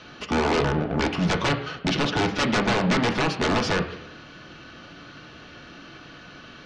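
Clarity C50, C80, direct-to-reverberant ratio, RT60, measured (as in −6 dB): 10.5 dB, 12.5 dB, 4.0 dB, 0.85 s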